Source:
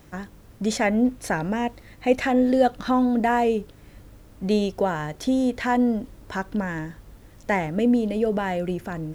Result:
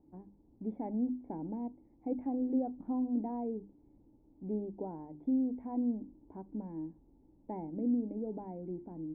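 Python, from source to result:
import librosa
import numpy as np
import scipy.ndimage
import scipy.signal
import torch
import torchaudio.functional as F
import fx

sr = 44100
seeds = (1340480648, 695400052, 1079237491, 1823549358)

y = fx.formant_cascade(x, sr, vowel='u')
y = fx.hum_notches(y, sr, base_hz=50, count=7)
y = F.gain(torch.from_numpy(y), -3.5).numpy()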